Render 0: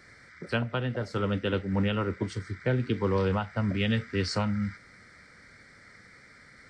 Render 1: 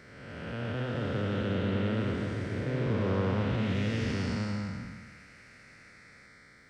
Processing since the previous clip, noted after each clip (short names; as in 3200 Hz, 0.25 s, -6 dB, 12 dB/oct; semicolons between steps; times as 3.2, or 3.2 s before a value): time blur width 0.584 s; echoes that change speed 0.293 s, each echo +2 st, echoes 3, each echo -6 dB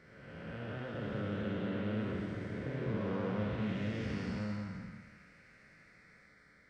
high shelf 4000 Hz -8 dB; on a send at -2.5 dB: reverb, pre-delay 3 ms; on the sum: gain -7.5 dB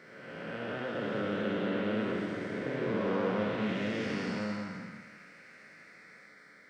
HPF 240 Hz 12 dB/oct; gain +7.5 dB